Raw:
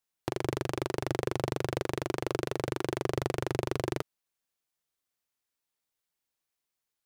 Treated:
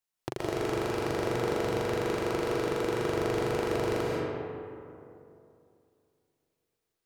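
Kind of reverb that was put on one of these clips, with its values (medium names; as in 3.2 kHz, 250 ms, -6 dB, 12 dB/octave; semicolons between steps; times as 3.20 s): algorithmic reverb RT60 2.7 s, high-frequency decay 0.45×, pre-delay 100 ms, DRR -5.5 dB; trim -3 dB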